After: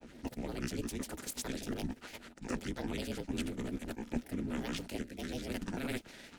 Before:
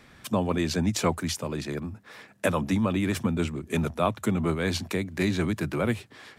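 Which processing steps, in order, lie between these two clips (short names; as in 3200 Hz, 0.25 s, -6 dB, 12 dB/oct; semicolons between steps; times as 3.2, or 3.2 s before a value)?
spectral contrast lowered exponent 0.68; reverse echo 0.238 s -23 dB; reverse; compressor 10:1, threshold -35 dBFS, peak gain reduction 17 dB; reverse; ring modulator 130 Hz; rotary speaker horn 8 Hz, later 0.9 Hz, at 3.52; grains, pitch spread up and down by 7 st; bell 240 Hz +8.5 dB 0.44 oct; notch 1100 Hz, Q 7.2; gain +4.5 dB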